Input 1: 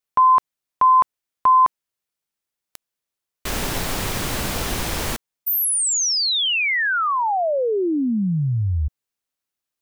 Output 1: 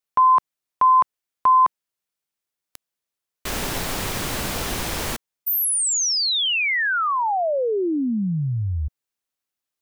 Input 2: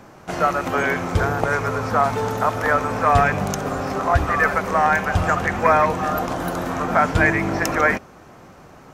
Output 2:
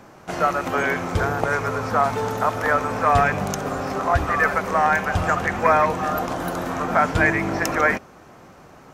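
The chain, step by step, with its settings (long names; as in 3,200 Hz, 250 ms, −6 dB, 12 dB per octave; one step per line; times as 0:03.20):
low-shelf EQ 150 Hz −3 dB
level −1 dB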